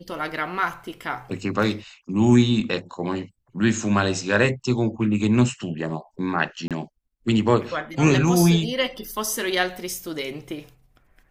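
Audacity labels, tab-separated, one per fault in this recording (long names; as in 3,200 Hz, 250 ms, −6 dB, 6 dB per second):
6.680000	6.710000	drop-out 27 ms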